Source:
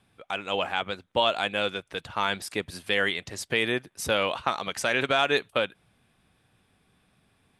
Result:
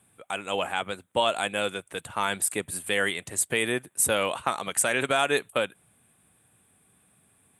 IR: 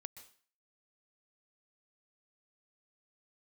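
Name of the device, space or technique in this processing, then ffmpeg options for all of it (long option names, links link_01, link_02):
budget condenser microphone: -af "highpass=78,highshelf=frequency=6700:width_type=q:width=3:gain=9.5"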